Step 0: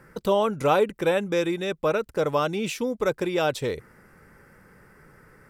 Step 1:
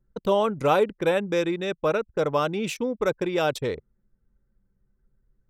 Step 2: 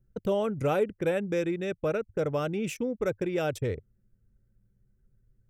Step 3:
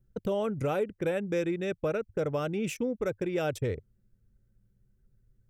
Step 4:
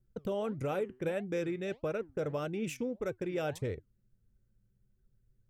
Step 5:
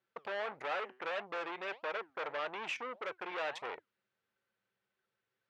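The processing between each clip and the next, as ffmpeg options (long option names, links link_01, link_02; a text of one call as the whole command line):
ffmpeg -i in.wav -af "anlmdn=6.31" out.wav
ffmpeg -i in.wav -filter_complex "[0:a]equalizer=frequency=100:width_type=o:width=0.67:gain=12,equalizer=frequency=1000:width_type=o:width=0.67:gain=-10,equalizer=frequency=4000:width_type=o:width=0.67:gain=-10,asplit=2[link_01][link_02];[link_02]acompressor=threshold=-32dB:ratio=6,volume=-2dB[link_03];[link_01][link_03]amix=inputs=2:normalize=0,volume=-5.5dB" out.wav
ffmpeg -i in.wav -af "alimiter=limit=-20.5dB:level=0:latency=1:release=293" out.wav
ffmpeg -i in.wav -af "flanger=delay=2.6:depth=5.4:regen=87:speed=1.6:shape=sinusoidal" out.wav
ffmpeg -i in.wav -af "aeval=exprs='(tanh(100*val(0)+0.35)-tanh(0.35))/100':channel_layout=same,asuperpass=centerf=1600:order=4:qfactor=0.61,volume=11.5dB" out.wav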